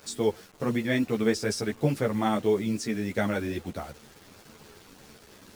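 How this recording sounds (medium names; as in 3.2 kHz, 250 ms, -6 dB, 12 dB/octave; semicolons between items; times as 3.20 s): a quantiser's noise floor 8-bit, dither none; a shimmering, thickened sound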